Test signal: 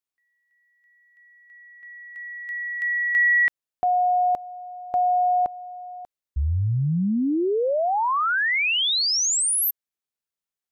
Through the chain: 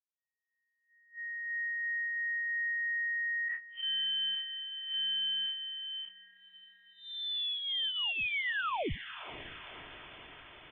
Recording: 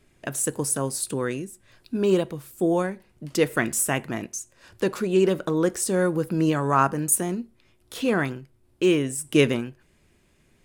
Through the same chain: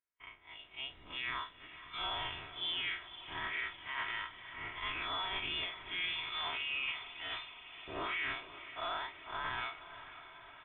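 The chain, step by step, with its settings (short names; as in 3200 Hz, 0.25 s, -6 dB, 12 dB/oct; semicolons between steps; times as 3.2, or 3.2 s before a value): time blur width 95 ms; HPF 1500 Hz 12 dB/oct; gate -59 dBFS, range -31 dB; comb 3.2 ms, depth 56%; reverse; compressor 6:1, threshold -43 dBFS; reverse; limiter -39.5 dBFS; AGC gain up to 11 dB; soft clip -32 dBFS; diffused feedback echo 0.523 s, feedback 69%, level -13.5 dB; inverted band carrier 3800 Hz; gain +2.5 dB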